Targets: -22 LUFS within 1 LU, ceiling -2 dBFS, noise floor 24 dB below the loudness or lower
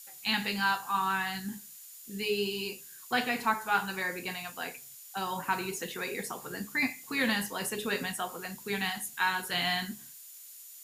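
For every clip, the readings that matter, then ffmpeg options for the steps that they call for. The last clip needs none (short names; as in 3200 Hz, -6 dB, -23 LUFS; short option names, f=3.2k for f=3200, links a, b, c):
steady tone 7000 Hz; tone level -56 dBFS; noise floor -50 dBFS; noise floor target -56 dBFS; loudness -32.0 LUFS; peak -14.0 dBFS; loudness target -22.0 LUFS
-> -af "bandreject=f=7k:w=30"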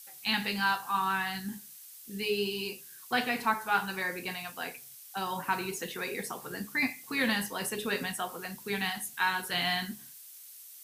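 steady tone none; noise floor -50 dBFS; noise floor target -56 dBFS
-> -af "afftdn=nr=6:nf=-50"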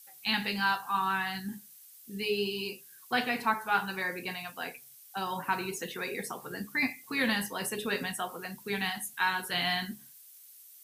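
noise floor -54 dBFS; noise floor target -56 dBFS
-> -af "afftdn=nr=6:nf=-54"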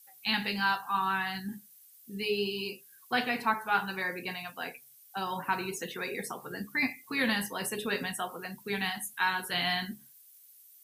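noise floor -57 dBFS; loudness -32.0 LUFS; peak -13.5 dBFS; loudness target -22.0 LUFS
-> -af "volume=10dB"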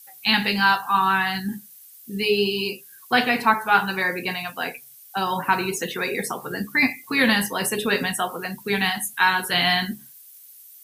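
loudness -22.0 LUFS; peak -3.5 dBFS; noise floor -47 dBFS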